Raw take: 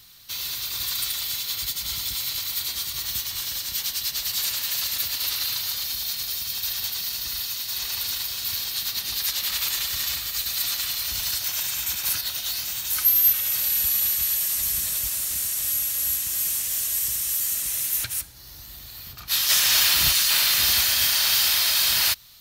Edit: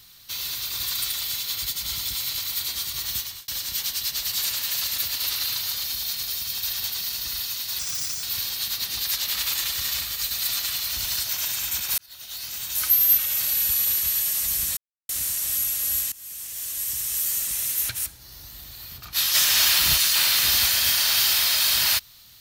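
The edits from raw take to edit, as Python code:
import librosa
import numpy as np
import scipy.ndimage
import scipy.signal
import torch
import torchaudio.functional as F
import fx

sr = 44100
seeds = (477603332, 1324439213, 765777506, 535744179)

y = fx.edit(x, sr, fx.fade_out_span(start_s=3.18, length_s=0.3),
    fx.speed_span(start_s=7.79, length_s=0.59, speed=1.34),
    fx.fade_in_span(start_s=12.13, length_s=0.83),
    fx.silence(start_s=14.92, length_s=0.32),
    fx.fade_in_from(start_s=16.27, length_s=1.12, floor_db=-20.5), tone=tone)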